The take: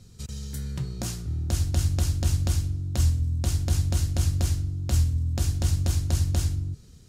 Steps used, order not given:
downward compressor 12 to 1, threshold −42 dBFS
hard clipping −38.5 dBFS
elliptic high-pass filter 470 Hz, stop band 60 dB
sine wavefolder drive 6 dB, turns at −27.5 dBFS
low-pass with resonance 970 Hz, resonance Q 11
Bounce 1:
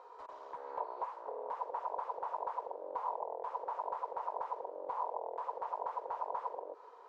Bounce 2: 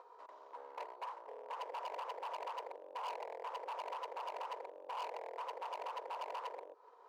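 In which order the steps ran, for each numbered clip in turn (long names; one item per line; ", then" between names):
sine wavefolder, then elliptic high-pass filter, then downward compressor, then hard clipping, then low-pass with resonance
sine wavefolder, then downward compressor, then low-pass with resonance, then hard clipping, then elliptic high-pass filter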